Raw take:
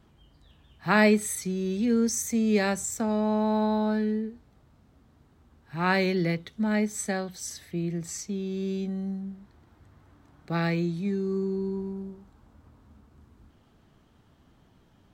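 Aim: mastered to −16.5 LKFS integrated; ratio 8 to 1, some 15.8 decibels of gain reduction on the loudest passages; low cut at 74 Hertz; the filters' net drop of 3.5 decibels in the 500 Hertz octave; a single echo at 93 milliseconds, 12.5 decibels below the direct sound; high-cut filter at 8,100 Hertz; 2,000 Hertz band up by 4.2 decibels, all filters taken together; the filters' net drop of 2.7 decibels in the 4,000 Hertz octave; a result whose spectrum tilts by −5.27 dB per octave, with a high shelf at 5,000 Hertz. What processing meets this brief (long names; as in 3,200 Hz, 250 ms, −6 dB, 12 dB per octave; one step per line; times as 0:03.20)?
high-pass filter 74 Hz
low-pass filter 8,100 Hz
parametric band 500 Hz −5 dB
parametric band 2,000 Hz +6.5 dB
parametric band 4,000 Hz −3 dB
high-shelf EQ 5,000 Hz −4 dB
downward compressor 8 to 1, threshold −32 dBFS
single-tap delay 93 ms −12.5 dB
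level +19.5 dB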